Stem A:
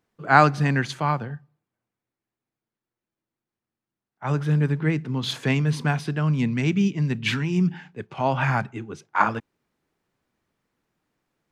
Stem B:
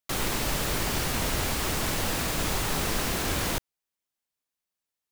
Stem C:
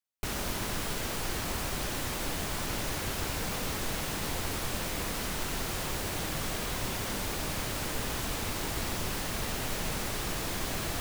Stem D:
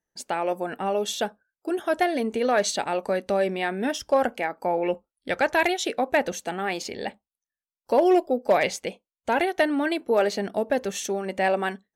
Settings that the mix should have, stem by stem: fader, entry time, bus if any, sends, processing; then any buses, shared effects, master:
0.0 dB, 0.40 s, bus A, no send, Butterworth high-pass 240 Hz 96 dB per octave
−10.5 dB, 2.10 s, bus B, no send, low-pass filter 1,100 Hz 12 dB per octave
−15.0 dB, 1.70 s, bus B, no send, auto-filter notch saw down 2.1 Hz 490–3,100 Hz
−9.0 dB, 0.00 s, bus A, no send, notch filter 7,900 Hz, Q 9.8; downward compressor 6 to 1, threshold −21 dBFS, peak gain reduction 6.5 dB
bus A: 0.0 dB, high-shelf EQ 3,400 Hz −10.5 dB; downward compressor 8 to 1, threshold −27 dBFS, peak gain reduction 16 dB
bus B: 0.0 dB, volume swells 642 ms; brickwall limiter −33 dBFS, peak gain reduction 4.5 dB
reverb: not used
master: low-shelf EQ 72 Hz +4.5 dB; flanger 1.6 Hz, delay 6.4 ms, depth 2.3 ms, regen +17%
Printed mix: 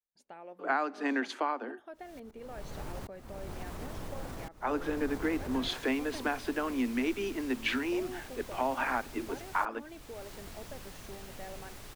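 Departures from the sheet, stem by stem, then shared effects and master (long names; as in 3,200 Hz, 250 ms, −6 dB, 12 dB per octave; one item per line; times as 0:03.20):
stem C: missing auto-filter notch saw down 2.1 Hz 490–3,100 Hz
stem D −9.0 dB → −20.5 dB
master: missing flanger 1.6 Hz, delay 6.4 ms, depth 2.3 ms, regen +17%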